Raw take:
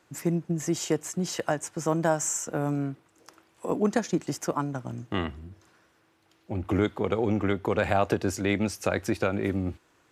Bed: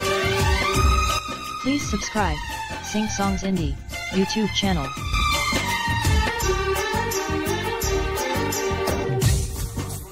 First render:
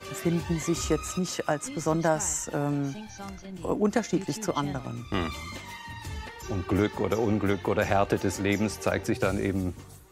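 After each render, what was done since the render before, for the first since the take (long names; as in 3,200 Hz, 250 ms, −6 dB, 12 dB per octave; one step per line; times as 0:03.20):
mix in bed −17.5 dB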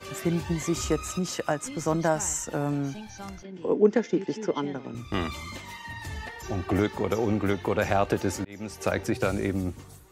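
0:03.43–0:04.95: loudspeaker in its box 200–5,100 Hz, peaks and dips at 230 Hz +4 dB, 430 Hz +9 dB, 680 Hz −7 dB, 1,200 Hz −7 dB, 2,600 Hz −3 dB, 4,200 Hz −9 dB
0:05.84–0:06.80: hollow resonant body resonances 700/1,800 Hz, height 11 dB
0:08.24–0:08.81: volume swells 553 ms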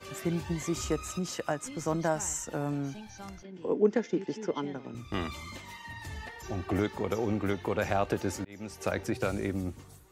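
level −4.5 dB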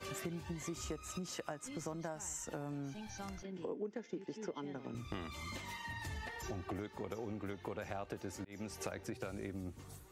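downward compressor 6 to 1, threshold −40 dBFS, peak gain reduction 20 dB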